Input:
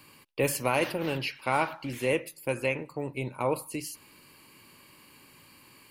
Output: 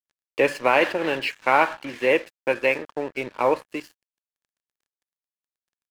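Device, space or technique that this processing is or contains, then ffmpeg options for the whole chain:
pocket radio on a weak battery: -af "highpass=330,lowpass=3.4k,aeval=exprs='sgn(val(0))*max(abs(val(0))-0.00355,0)':c=same,equalizer=f=1.7k:t=o:w=0.21:g=8,volume=9dB"

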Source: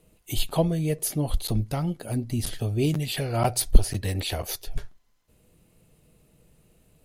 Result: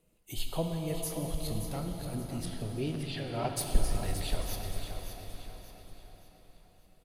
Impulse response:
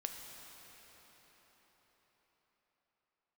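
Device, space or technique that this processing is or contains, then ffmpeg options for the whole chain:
cathedral: -filter_complex "[0:a]asettb=1/sr,asplit=3[a][b][c];[a]atrim=end=2.464[d];[b]atrim=start=2.46:end=3.5,asetpts=PTS-STARTPTS,afade=t=in:d=0.004:c=qsin,afade=t=out:st=1.036:d=0.004:c=qsin,lowpass=f=5.2k:w=0.5412,lowpass=f=5.2k:w=1.3066[e];[c]atrim=start=3.496[f];[d][e]acrossfade=d=0.004:c1=hsin:c2=qsin[g];[g][f]acrossfade=d=0.004:c1=qsin:c2=hsin,equalizer=f=86:t=o:w=1.6:g=-3,aecho=1:1:575|1150|1725|2300:0.355|0.135|0.0512|0.0195[h];[1:a]atrim=start_sample=2205[i];[h][i]afir=irnorm=-1:irlink=0,volume=-7dB"

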